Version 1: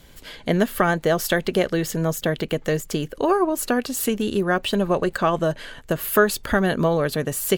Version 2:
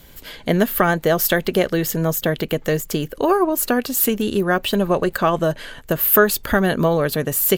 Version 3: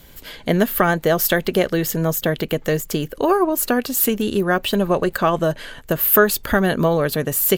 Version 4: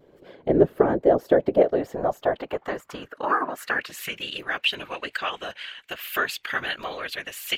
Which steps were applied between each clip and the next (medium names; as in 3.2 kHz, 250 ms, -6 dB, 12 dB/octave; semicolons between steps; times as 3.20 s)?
peaking EQ 14 kHz +14.5 dB 0.25 oct; trim +2.5 dB
no audible change
band-pass sweep 410 Hz -> 2.6 kHz, 1.09–4.32 s; whisper effect; vibrato 1.2 Hz 31 cents; trim +4 dB